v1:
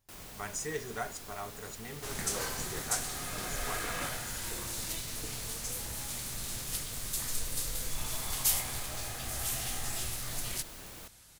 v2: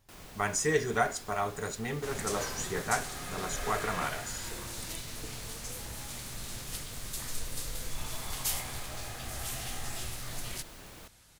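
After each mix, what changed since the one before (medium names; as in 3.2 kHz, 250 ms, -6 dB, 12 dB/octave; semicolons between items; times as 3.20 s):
speech +10.0 dB; master: add treble shelf 6 kHz -6.5 dB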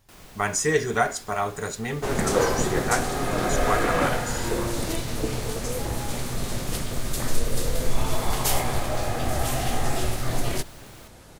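speech +5.5 dB; first sound: send on; second sound: remove amplifier tone stack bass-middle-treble 5-5-5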